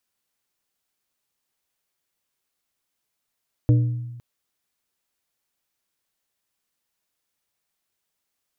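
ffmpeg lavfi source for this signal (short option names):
-f lavfi -i "aevalsrc='0.266*pow(10,-3*t/1.16)*sin(2*PI*120*t)+0.1*pow(10,-3*t/0.611)*sin(2*PI*300*t)+0.0376*pow(10,-3*t/0.44)*sin(2*PI*480*t)+0.0141*pow(10,-3*t/0.376)*sin(2*PI*600*t)':d=0.51:s=44100"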